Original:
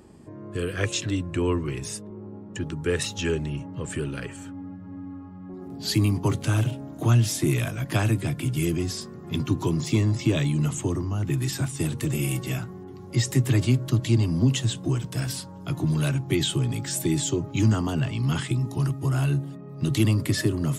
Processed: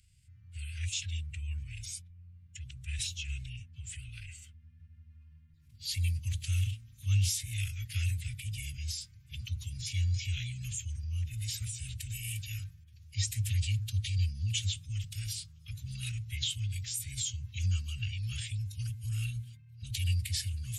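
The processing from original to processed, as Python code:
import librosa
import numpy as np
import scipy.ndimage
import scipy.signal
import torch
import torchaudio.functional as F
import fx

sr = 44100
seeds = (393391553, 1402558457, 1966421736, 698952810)

y = fx.transient(x, sr, attack_db=-2, sustain_db=4)
y = fx.pitch_keep_formants(y, sr, semitones=-3.0)
y = scipy.signal.sosfilt(scipy.signal.cheby1(3, 1.0, [100.0, 2500.0], 'bandstop', fs=sr, output='sos'), y)
y = y * librosa.db_to_amplitude(-5.0)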